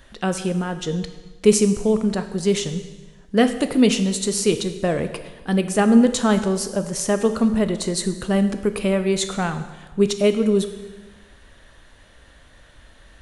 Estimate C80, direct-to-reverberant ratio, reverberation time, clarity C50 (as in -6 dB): 12.0 dB, 8.5 dB, 1.3 s, 11.0 dB